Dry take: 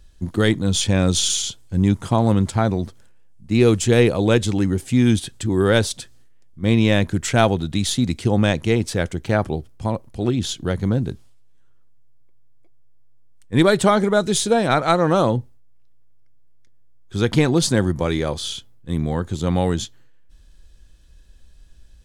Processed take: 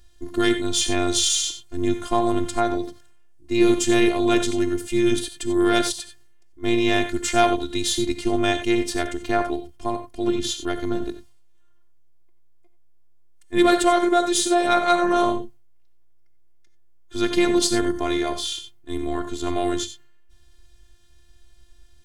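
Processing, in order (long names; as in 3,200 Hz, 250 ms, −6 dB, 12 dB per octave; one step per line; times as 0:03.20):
low-shelf EQ 200 Hz −4 dB
reverb whose tail is shaped and stops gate 110 ms rising, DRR 8 dB
in parallel at −4.5 dB: sine wavefolder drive 4 dB, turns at −2 dBFS
on the sum: phases set to zero 349 Hz
level −6 dB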